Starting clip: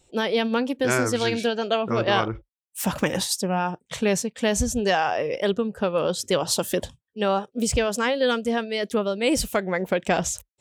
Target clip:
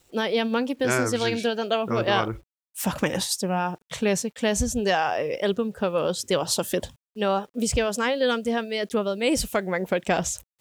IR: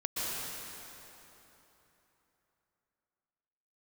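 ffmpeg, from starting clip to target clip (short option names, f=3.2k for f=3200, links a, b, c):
-af "acrusher=bits=9:mix=0:aa=0.000001,volume=-1dB"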